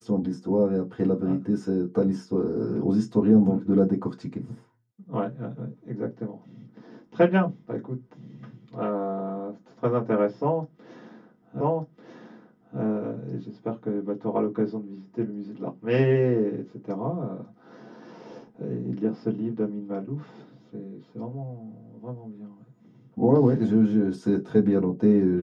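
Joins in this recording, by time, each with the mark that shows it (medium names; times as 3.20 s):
11.61 s: repeat of the last 1.19 s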